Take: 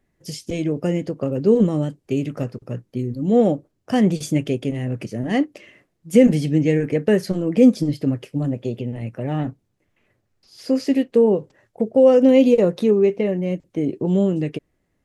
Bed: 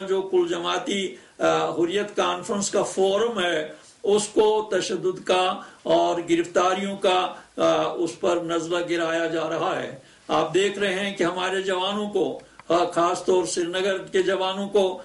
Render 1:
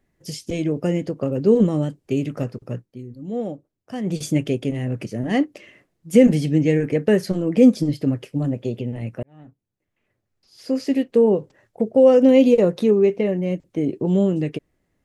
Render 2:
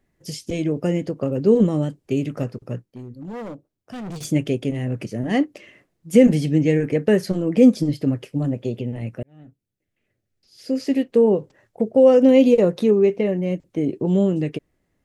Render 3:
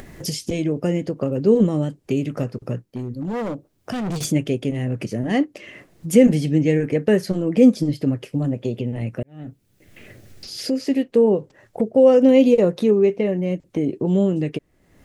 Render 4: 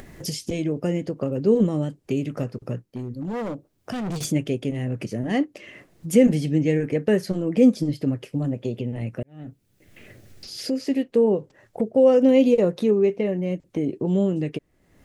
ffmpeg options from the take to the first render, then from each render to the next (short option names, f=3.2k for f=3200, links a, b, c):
-filter_complex "[0:a]asplit=4[a][b][c][d];[a]atrim=end=2.87,asetpts=PTS-STARTPTS,afade=t=out:st=2.74:d=0.13:silence=0.281838[e];[b]atrim=start=2.87:end=4.04,asetpts=PTS-STARTPTS,volume=-11dB[f];[c]atrim=start=4.04:end=9.23,asetpts=PTS-STARTPTS,afade=t=in:d=0.13:silence=0.281838,afade=t=out:st=5.186:d=0.004:c=hsin[g];[d]atrim=start=9.23,asetpts=PTS-STARTPTS,afade=t=in:d=2.09[h];[e][f][g][h]concat=n=4:v=0:a=1"
-filter_complex "[0:a]asettb=1/sr,asplit=3[a][b][c];[a]atrim=end=2.874[d];[b]atrim=start=2.87:end=4.25,asetpts=PTS-STARTPTS,afade=t=in:d=0.004:c=qsin,afade=t=out:st=1.376:d=0.004:c=qsin,asoftclip=type=hard:threshold=-30dB[e];[c]atrim=start=4.246[f];[d][e]acrossfade=d=0.004:c1=hsin:c2=qsin[g];[g][f]acrossfade=d=0.004:c1=qsin:c2=hsin,asettb=1/sr,asplit=3[h][i][j];[h]atrim=end=9.174[k];[i]atrim=start=9.17:end=10.81,asetpts=PTS-STARTPTS,afade=t=in:d=0.004:c=qsin,afade=t=out:st=1.636:d=0.004:c=qsin,equalizer=f=1k:t=o:w=0.8:g=-10.5[l];[j]atrim=start=10.806[m];[k][l]acrossfade=d=0.004:c1=hsin:c2=qsin[n];[n][m]acrossfade=d=0.004:c1=qsin:c2=hsin"
-af "acompressor=mode=upward:threshold=-19dB:ratio=2.5"
-af "volume=-3dB"